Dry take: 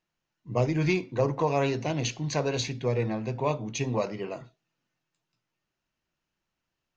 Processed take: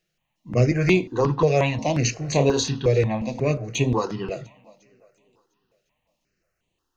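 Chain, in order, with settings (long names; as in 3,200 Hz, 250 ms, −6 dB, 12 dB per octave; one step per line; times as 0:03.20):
0:02.13–0:02.87: double-tracking delay 29 ms −6 dB
feedback echo with a high-pass in the loop 351 ms, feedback 50%, high-pass 150 Hz, level −24 dB
step-sequenced phaser 5.6 Hz 260–5,200 Hz
level +9 dB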